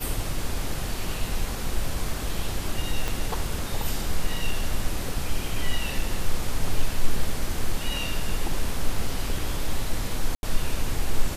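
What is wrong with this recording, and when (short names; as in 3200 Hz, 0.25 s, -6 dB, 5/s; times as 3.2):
3.08 pop -13 dBFS
10.35–10.43 gap 81 ms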